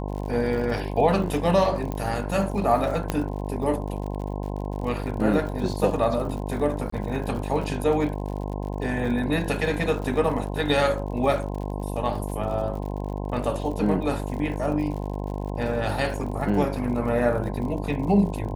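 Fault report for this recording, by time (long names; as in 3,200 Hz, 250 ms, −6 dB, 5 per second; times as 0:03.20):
mains buzz 50 Hz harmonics 21 −30 dBFS
surface crackle 70 per second −34 dBFS
0:01.92: click −17 dBFS
0:03.10: click −10 dBFS
0:06.90–0:06.92: drop-out 24 ms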